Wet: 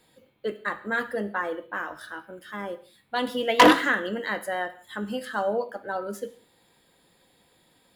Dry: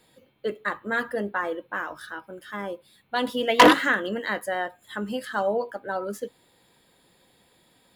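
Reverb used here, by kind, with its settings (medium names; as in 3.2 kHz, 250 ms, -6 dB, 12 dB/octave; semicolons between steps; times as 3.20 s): gated-style reverb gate 210 ms falling, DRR 11 dB; trim -1.5 dB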